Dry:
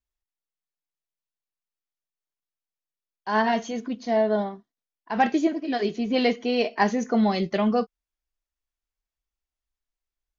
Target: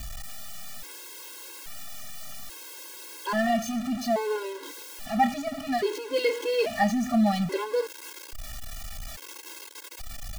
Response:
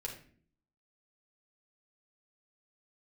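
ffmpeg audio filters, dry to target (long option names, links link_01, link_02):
-af "aeval=exprs='val(0)+0.5*0.0531*sgn(val(0))':channel_layout=same,afftfilt=real='re*gt(sin(2*PI*0.6*pts/sr)*(1-2*mod(floor(b*sr/1024/280),2)),0)':imag='im*gt(sin(2*PI*0.6*pts/sr)*(1-2*mod(floor(b*sr/1024/280),2)),0)':win_size=1024:overlap=0.75,volume=-2dB"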